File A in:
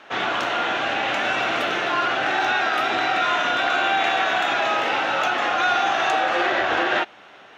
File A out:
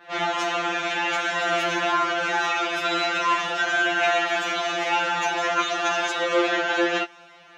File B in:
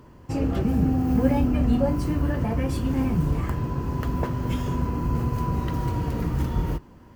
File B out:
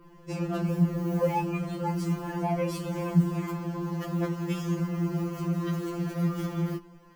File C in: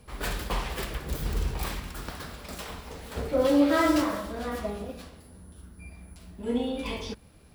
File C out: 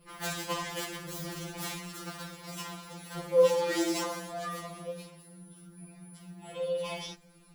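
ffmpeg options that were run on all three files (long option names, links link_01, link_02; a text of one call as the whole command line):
ffmpeg -i in.wav -af "adynamicequalizer=threshold=0.00282:dfrequency=6800:dqfactor=1.7:tfrequency=6800:tqfactor=1.7:attack=5:release=100:ratio=0.375:range=4:mode=boostabove:tftype=bell,afftfilt=real='re*2.83*eq(mod(b,8),0)':imag='im*2.83*eq(mod(b,8),0)':win_size=2048:overlap=0.75" out.wav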